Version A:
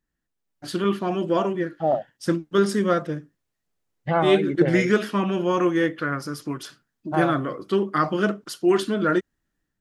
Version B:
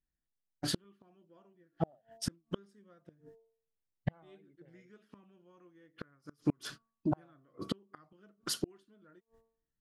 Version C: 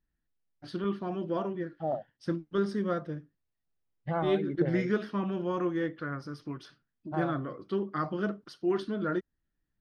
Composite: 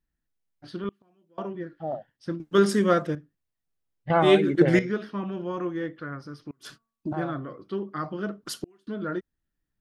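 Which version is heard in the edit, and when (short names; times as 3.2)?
C
0.89–1.38 from B
2.4–3.15 from A
4.1–4.79 from A
6.51–7.13 from B
8.45–8.87 from B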